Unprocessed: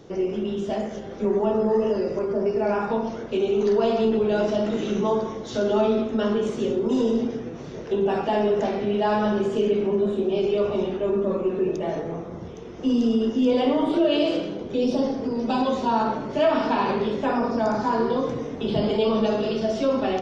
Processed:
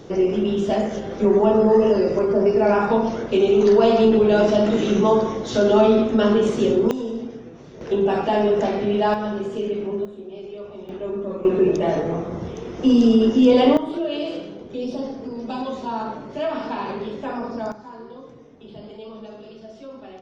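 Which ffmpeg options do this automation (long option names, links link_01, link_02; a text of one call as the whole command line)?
ffmpeg -i in.wav -af "asetnsamples=nb_out_samples=441:pad=0,asendcmd='6.91 volume volume -6dB;7.81 volume volume 3dB;9.14 volume volume -3.5dB;10.05 volume volume -13dB;10.89 volume volume -4.5dB;11.45 volume volume 6.5dB;13.77 volume volume -5dB;17.72 volume volume -16.5dB',volume=6dB" out.wav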